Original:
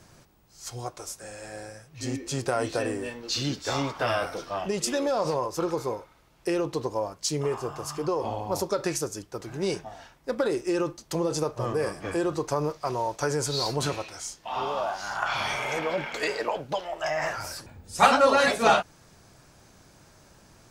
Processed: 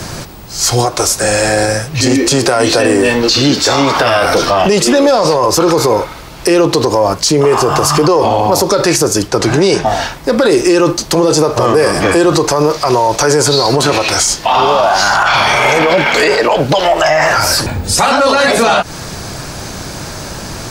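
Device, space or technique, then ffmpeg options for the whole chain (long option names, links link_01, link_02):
mastering chain: -filter_complex "[0:a]asettb=1/sr,asplit=3[link_01][link_02][link_03];[link_01]atrim=end=9.284[link_04];[link_02]atrim=start=9.28:end=9.86,asetpts=PTS-STARTPTS,afade=type=in:duration=0.004:curve=qsin,afade=type=out:start_time=0.576:duration=0.004:curve=qsin,lowpass=9400[link_05];[link_03]atrim=start=9.856[link_06];[link_04][link_05]acrossfade=duration=0.004:curve1=hsin:curve2=qsin[link_07];[link_07][link_06]acrossfade=duration=0.004:curve1=qsin:curve2=hsin,equalizer=frequency=4400:width_type=o:width=0.49:gain=3.5,acrossover=split=210|1900[link_08][link_09][link_10];[link_08]acompressor=threshold=-45dB:ratio=4[link_11];[link_09]acompressor=threshold=-26dB:ratio=4[link_12];[link_10]acompressor=threshold=-35dB:ratio=4[link_13];[link_11][link_12][link_13]amix=inputs=3:normalize=0,acompressor=threshold=-32dB:ratio=2,asoftclip=type=tanh:threshold=-20dB,alimiter=level_in=31.5dB:limit=-1dB:release=50:level=0:latency=1,volume=-1.5dB"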